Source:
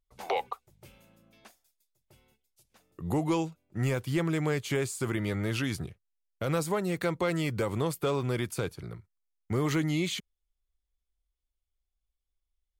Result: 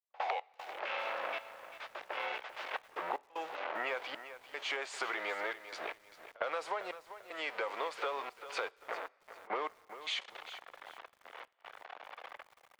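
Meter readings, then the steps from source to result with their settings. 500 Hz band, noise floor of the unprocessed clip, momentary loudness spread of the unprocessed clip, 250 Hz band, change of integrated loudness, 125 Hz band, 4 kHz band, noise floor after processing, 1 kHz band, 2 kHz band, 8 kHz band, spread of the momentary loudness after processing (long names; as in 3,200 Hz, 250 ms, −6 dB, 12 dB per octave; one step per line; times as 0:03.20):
−8.5 dB, −84 dBFS, 9 LU, −24.0 dB, −9.0 dB, below −40 dB, −2.0 dB, −68 dBFS, 0.0 dB, 0.0 dB, −13.0 dB, 15 LU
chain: converter with a step at zero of −34.5 dBFS
high-pass filter 590 Hz 24 dB per octave
low-pass that shuts in the quiet parts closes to 1,200 Hz, open at −29 dBFS
low-pass filter 2,900 Hz 12 dB per octave
downward compressor 16 to 1, threshold −45 dBFS, peak gain reduction 19 dB
gate pattern ".x.xxxx..xxxxx" 76 BPM −60 dB
backwards echo 58 ms −22.5 dB
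coupled-rooms reverb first 0.28 s, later 2.9 s, from −18 dB, DRR 19.5 dB
feedback echo at a low word length 394 ms, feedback 35%, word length 11 bits, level −12 dB
level +12 dB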